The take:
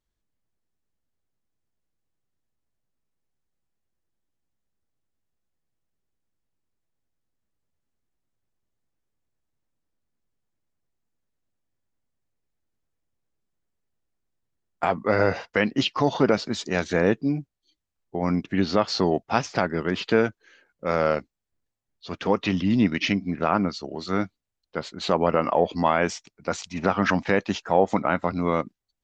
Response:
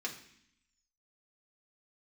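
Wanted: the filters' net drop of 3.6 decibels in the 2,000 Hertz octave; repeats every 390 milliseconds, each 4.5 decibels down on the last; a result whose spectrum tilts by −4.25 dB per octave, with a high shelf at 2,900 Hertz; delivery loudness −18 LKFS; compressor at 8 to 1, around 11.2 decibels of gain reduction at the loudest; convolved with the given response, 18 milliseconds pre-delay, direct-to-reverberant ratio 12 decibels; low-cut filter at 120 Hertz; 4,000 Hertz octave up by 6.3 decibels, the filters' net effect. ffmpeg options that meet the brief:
-filter_complex "[0:a]highpass=120,equalizer=frequency=2000:width_type=o:gain=-8.5,highshelf=frequency=2900:gain=5.5,equalizer=frequency=4000:width_type=o:gain=6,acompressor=threshold=-27dB:ratio=8,aecho=1:1:390|780|1170|1560|1950|2340|2730|3120|3510:0.596|0.357|0.214|0.129|0.0772|0.0463|0.0278|0.0167|0.01,asplit=2[link_01][link_02];[1:a]atrim=start_sample=2205,adelay=18[link_03];[link_02][link_03]afir=irnorm=-1:irlink=0,volume=-14dB[link_04];[link_01][link_04]amix=inputs=2:normalize=0,volume=13dB"

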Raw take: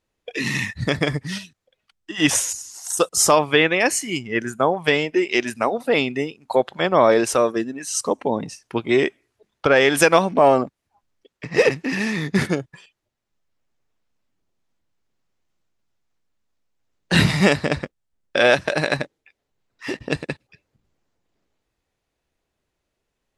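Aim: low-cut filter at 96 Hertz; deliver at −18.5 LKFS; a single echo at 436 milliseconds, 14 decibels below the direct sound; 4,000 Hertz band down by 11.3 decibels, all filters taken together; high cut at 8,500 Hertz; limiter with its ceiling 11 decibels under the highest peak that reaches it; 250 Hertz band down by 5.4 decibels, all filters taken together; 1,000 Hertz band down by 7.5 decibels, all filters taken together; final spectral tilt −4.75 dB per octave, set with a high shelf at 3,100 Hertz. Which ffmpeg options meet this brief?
ffmpeg -i in.wav -af "highpass=96,lowpass=8500,equalizer=frequency=250:width_type=o:gain=-7,equalizer=frequency=1000:width_type=o:gain=-8.5,highshelf=frequency=3100:gain=-7.5,equalizer=frequency=4000:width_type=o:gain=-9,alimiter=limit=-18dB:level=0:latency=1,aecho=1:1:436:0.2,volume=12dB" out.wav

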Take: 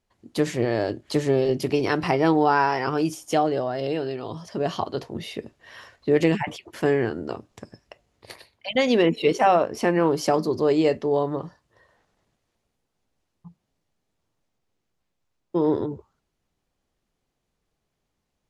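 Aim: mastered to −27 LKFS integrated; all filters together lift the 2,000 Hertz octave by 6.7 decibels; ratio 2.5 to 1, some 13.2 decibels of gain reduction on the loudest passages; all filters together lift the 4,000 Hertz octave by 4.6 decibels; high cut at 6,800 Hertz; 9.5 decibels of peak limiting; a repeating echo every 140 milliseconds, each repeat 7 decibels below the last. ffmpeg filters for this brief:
ffmpeg -i in.wav -af "lowpass=6800,equalizer=frequency=2000:width_type=o:gain=7.5,equalizer=frequency=4000:width_type=o:gain=3.5,acompressor=threshold=-34dB:ratio=2.5,alimiter=level_in=0.5dB:limit=-24dB:level=0:latency=1,volume=-0.5dB,aecho=1:1:140|280|420|560|700:0.447|0.201|0.0905|0.0407|0.0183,volume=8dB" out.wav

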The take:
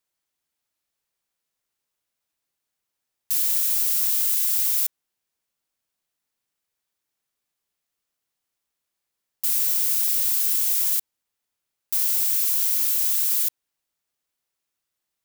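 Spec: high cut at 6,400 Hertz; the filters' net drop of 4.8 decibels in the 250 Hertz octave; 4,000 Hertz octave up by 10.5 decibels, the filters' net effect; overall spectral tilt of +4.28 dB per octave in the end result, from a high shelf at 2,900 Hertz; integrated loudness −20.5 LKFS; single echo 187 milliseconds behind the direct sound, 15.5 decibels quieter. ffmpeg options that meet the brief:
ffmpeg -i in.wav -af "lowpass=6400,equalizer=frequency=250:width_type=o:gain=-7,highshelf=frequency=2900:gain=8.5,equalizer=frequency=4000:width_type=o:gain=7,aecho=1:1:187:0.168,volume=3dB" out.wav

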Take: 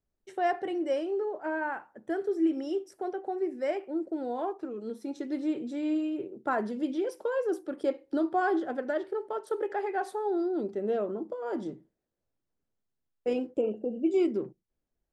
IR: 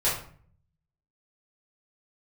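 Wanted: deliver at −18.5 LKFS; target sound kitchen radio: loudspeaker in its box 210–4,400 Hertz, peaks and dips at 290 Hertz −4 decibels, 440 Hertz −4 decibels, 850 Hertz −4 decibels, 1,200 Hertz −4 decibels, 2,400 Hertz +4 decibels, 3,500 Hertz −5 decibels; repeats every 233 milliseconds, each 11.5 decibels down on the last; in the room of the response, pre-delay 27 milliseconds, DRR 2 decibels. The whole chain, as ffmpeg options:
-filter_complex "[0:a]aecho=1:1:233|466|699:0.266|0.0718|0.0194,asplit=2[link_01][link_02];[1:a]atrim=start_sample=2205,adelay=27[link_03];[link_02][link_03]afir=irnorm=-1:irlink=0,volume=-13.5dB[link_04];[link_01][link_04]amix=inputs=2:normalize=0,highpass=210,equalizer=frequency=290:width_type=q:width=4:gain=-4,equalizer=frequency=440:width_type=q:width=4:gain=-4,equalizer=frequency=850:width_type=q:width=4:gain=-4,equalizer=frequency=1200:width_type=q:width=4:gain=-4,equalizer=frequency=2400:width_type=q:width=4:gain=4,equalizer=frequency=3500:width_type=q:width=4:gain=-5,lowpass=frequency=4400:width=0.5412,lowpass=frequency=4400:width=1.3066,volume=14dB"

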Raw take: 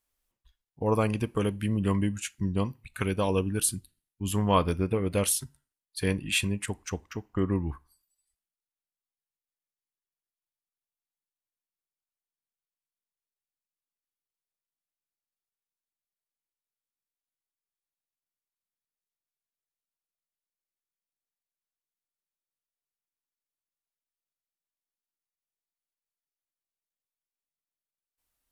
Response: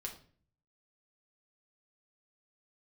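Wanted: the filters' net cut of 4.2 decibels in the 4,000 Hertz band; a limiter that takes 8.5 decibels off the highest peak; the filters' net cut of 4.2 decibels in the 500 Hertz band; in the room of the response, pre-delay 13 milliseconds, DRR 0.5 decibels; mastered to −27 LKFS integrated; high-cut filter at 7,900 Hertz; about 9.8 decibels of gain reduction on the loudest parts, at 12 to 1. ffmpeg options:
-filter_complex "[0:a]lowpass=7900,equalizer=frequency=500:width_type=o:gain=-5,equalizer=frequency=4000:width_type=o:gain=-5.5,acompressor=threshold=-30dB:ratio=12,alimiter=level_in=4.5dB:limit=-24dB:level=0:latency=1,volume=-4.5dB,asplit=2[link_01][link_02];[1:a]atrim=start_sample=2205,adelay=13[link_03];[link_02][link_03]afir=irnorm=-1:irlink=0,volume=1.5dB[link_04];[link_01][link_04]amix=inputs=2:normalize=0,volume=10dB"

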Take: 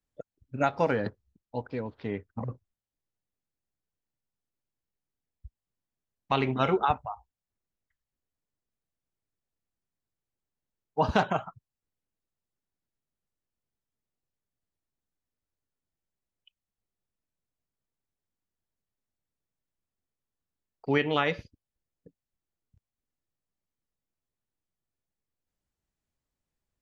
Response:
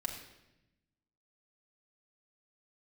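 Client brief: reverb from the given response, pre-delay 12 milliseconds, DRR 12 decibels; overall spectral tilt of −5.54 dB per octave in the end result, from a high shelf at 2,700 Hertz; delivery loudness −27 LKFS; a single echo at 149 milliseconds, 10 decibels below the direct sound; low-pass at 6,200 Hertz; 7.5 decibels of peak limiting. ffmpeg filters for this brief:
-filter_complex "[0:a]lowpass=6200,highshelf=frequency=2700:gain=-8.5,alimiter=limit=-17dB:level=0:latency=1,aecho=1:1:149:0.316,asplit=2[link_01][link_02];[1:a]atrim=start_sample=2205,adelay=12[link_03];[link_02][link_03]afir=irnorm=-1:irlink=0,volume=-13dB[link_04];[link_01][link_04]amix=inputs=2:normalize=0,volume=5dB"

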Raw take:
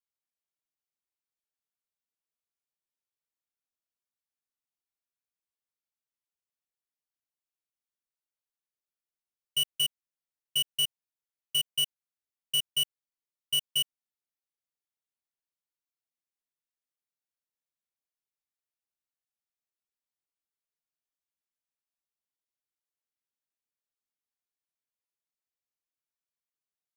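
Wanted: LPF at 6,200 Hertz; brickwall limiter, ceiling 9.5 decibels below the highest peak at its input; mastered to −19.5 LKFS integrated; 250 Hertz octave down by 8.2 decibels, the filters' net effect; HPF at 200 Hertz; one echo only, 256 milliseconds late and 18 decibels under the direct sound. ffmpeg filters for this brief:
ffmpeg -i in.wav -af "highpass=200,lowpass=6200,equalizer=frequency=250:width_type=o:gain=-7,alimiter=level_in=8.5dB:limit=-24dB:level=0:latency=1,volume=-8.5dB,aecho=1:1:256:0.126,volume=20dB" out.wav

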